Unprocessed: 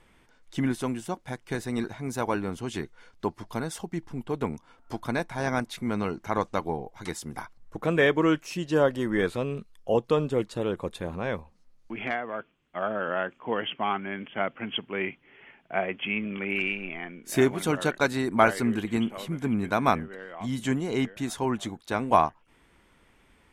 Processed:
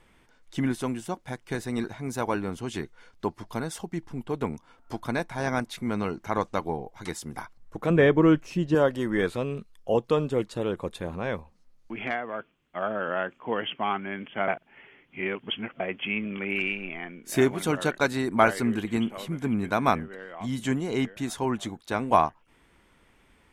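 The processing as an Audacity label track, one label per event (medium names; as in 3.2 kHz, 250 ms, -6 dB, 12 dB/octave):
7.900000	8.750000	tilt EQ -2.5 dB/octave
14.480000	15.800000	reverse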